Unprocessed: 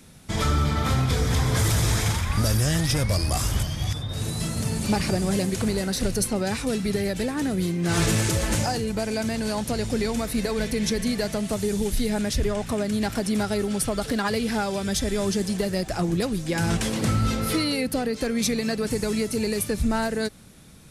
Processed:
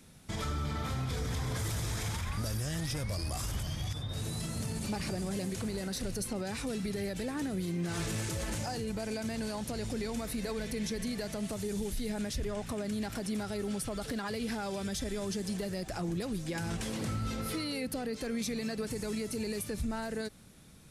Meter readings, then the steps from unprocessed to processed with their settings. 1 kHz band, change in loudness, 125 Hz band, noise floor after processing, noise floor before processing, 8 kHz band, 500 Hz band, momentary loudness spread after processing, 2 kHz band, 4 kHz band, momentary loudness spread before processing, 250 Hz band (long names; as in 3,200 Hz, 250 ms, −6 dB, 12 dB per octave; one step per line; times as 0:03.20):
−11.5 dB, −11.0 dB, −11.5 dB, −44 dBFS, −37 dBFS, −11.0 dB, −11.0 dB, 2 LU, −11.0 dB, −11.0 dB, 5 LU, −10.0 dB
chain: brickwall limiter −20 dBFS, peak gain reduction 8 dB
level −7 dB